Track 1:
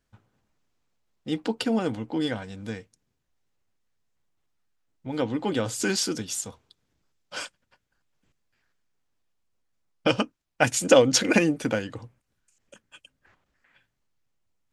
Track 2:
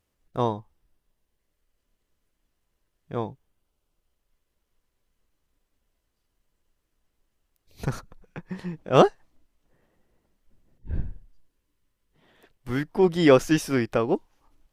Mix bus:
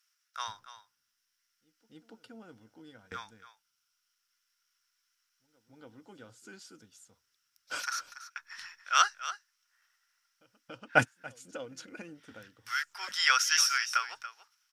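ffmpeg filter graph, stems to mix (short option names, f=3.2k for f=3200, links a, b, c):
-filter_complex "[0:a]adelay=350,volume=-4.5dB,asplit=2[a][b];[b]volume=-21.5dB[c];[1:a]highpass=f=1.4k:w=0.5412,highpass=f=1.4k:w=1.3066,equalizer=f=5.5k:t=o:w=0.29:g=15,volume=1.5dB,asplit=3[d][e][f];[e]volume=-13.5dB[g];[f]apad=whole_len=664899[h];[a][h]sidechaingate=range=-41dB:threshold=-59dB:ratio=16:detection=peak[i];[c][g]amix=inputs=2:normalize=0,aecho=0:1:284:1[j];[i][d][j]amix=inputs=3:normalize=0,equalizer=f=1.4k:w=6.6:g=11"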